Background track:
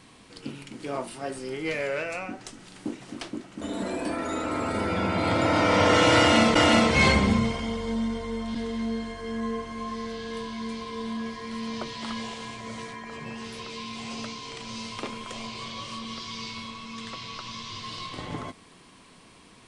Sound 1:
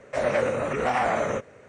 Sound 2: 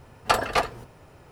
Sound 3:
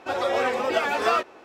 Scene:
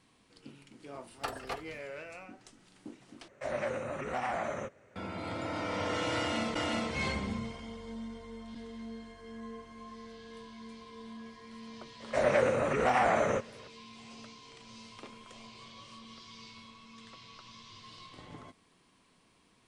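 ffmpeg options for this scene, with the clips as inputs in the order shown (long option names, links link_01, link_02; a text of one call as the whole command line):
ffmpeg -i bed.wav -i cue0.wav -i cue1.wav -filter_complex "[1:a]asplit=2[link_01][link_02];[0:a]volume=-14dB[link_03];[link_01]bandreject=frequency=460:width=7.6[link_04];[link_03]asplit=2[link_05][link_06];[link_05]atrim=end=3.284[link_07];[link_04]atrim=end=1.68,asetpts=PTS-STARTPTS,volume=-10dB[link_08];[link_06]atrim=start=4.956[link_09];[2:a]atrim=end=1.31,asetpts=PTS-STARTPTS,volume=-16dB,afade=type=in:duration=0.004:curve=hsin,afade=type=out:start_time=1.306:duration=0.004:curve=hsin,adelay=940[link_10];[link_02]atrim=end=1.68,asetpts=PTS-STARTPTS,volume=-2.5dB,afade=type=in:duration=0.004:curve=hsin,afade=type=out:start_time=1.676:duration=0.004:curve=hsin,adelay=12000[link_11];[link_07][link_08]acrossfade=duration=0.004:curve1=hsin:curve2=hsin[link_12];[link_12][link_09]acrossfade=duration=0.004:curve1=hsin:curve2=hsin[link_13];[link_13][link_10][link_11]amix=inputs=3:normalize=0" out.wav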